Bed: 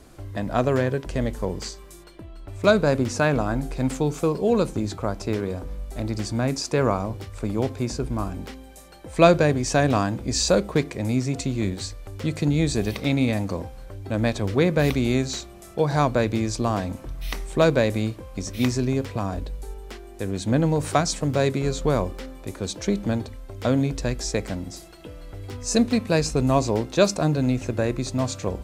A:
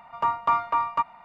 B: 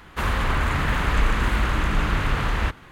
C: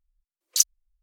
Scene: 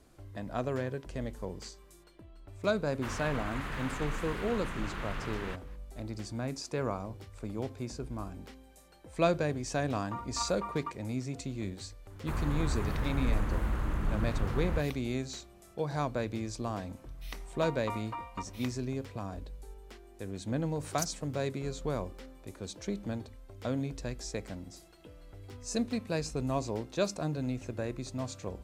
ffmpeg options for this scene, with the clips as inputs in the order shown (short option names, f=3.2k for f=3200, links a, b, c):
-filter_complex "[2:a]asplit=2[a][b];[1:a]asplit=2[c][d];[0:a]volume=-12dB[e];[a]equalizer=f=62:t=o:w=0.77:g=-13[f];[c]aphaser=in_gain=1:out_gain=1:delay=3:decay=0.5:speed=1.9:type=triangular[g];[b]equalizer=f=3.1k:t=o:w=2.9:g=-12.5[h];[d]aecho=1:1:3.9:0.94[i];[f]atrim=end=2.91,asetpts=PTS-STARTPTS,volume=-14dB,afade=t=in:d=0.004:c=hsin,afade=t=out:st=2.906:d=0.004:c=hsin,adelay=2850[j];[g]atrim=end=1.24,asetpts=PTS-STARTPTS,volume=-16.5dB,afade=t=in:d=0.004:c=hsin,afade=t=out:st=1.236:d=0.004:c=hsin,adelay=9890[k];[h]atrim=end=2.91,asetpts=PTS-STARTPTS,volume=-8.5dB,afade=t=in:d=0.004:c=hsin,afade=t=out:st=2.906:d=0.004:c=hsin,adelay=12100[l];[i]atrim=end=1.24,asetpts=PTS-STARTPTS,volume=-13.5dB,afade=t=in:d=0.004:c=hsin,afade=t=out:st=1.236:d=0.004:c=hsin,adelay=17400[m];[3:a]atrim=end=1.02,asetpts=PTS-STARTPTS,volume=-17.5dB,afade=t=in:d=0.004:c=hsin,afade=t=out:st=1.016:d=0.004:c=hsin,adelay=20420[n];[e][j][k][l][m][n]amix=inputs=6:normalize=0"